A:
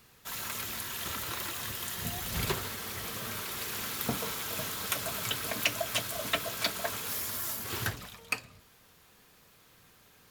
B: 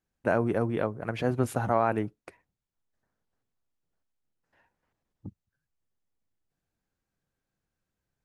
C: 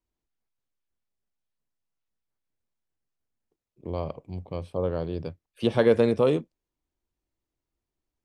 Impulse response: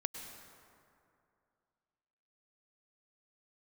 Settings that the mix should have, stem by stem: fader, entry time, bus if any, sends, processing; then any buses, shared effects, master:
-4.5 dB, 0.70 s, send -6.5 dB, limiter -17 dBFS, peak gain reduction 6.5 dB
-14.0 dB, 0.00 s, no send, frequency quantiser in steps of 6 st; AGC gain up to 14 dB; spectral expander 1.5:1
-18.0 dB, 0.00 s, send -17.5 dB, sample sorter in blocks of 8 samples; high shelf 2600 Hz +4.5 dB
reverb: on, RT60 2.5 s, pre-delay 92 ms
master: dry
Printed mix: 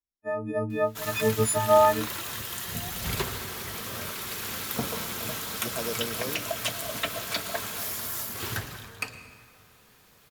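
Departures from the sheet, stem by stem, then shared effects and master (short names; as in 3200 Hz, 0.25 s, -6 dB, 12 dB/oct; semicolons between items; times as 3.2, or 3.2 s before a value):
stem B -14.0 dB -> -7.0 dB; reverb return +8.0 dB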